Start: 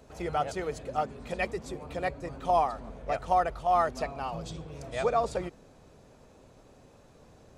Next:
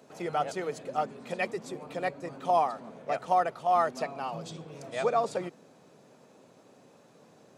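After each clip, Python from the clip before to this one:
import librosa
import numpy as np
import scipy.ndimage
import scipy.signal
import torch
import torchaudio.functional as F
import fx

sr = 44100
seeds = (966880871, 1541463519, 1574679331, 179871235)

y = scipy.signal.sosfilt(scipy.signal.butter(4, 150.0, 'highpass', fs=sr, output='sos'), x)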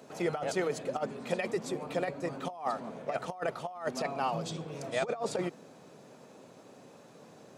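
y = fx.over_compress(x, sr, threshold_db=-31.0, ratio=-0.5)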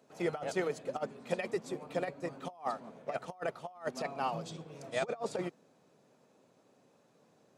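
y = fx.upward_expand(x, sr, threshold_db=-51.0, expansion=1.5)
y = F.gain(torch.from_numpy(y), -1.0).numpy()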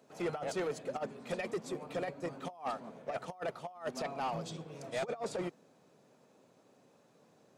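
y = 10.0 ** (-31.0 / 20.0) * np.tanh(x / 10.0 ** (-31.0 / 20.0))
y = F.gain(torch.from_numpy(y), 1.5).numpy()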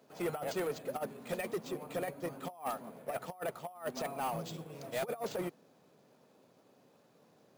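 y = np.repeat(x[::4], 4)[:len(x)]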